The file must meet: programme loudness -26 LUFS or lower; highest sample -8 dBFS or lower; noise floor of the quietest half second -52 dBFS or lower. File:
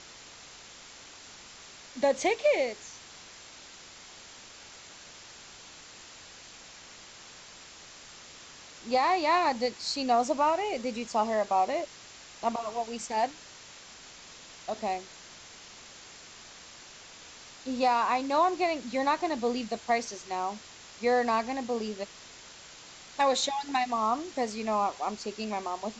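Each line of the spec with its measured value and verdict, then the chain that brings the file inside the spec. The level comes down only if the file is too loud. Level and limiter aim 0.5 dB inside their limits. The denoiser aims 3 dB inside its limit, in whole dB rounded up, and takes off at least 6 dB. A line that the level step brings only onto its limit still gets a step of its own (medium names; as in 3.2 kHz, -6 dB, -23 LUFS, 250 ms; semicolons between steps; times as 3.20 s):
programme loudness -29.0 LUFS: pass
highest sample -15.0 dBFS: pass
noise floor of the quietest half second -50 dBFS: fail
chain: noise reduction 6 dB, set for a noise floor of -50 dBFS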